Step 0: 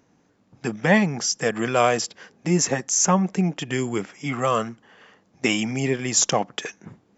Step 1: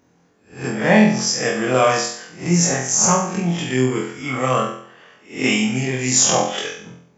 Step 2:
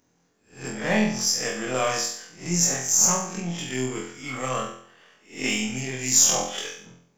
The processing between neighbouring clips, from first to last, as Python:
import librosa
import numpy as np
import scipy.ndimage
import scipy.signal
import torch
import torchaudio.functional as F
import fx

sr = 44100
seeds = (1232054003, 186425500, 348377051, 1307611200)

y1 = fx.spec_swells(x, sr, rise_s=0.38)
y1 = fx.room_flutter(y1, sr, wall_m=4.0, rt60_s=0.58)
y1 = y1 * 10.0 ** (-1.0 / 20.0)
y2 = np.where(y1 < 0.0, 10.0 ** (-3.0 / 20.0) * y1, y1)
y2 = fx.high_shelf(y2, sr, hz=4000.0, db=11.0)
y2 = y2 * 10.0 ** (-8.5 / 20.0)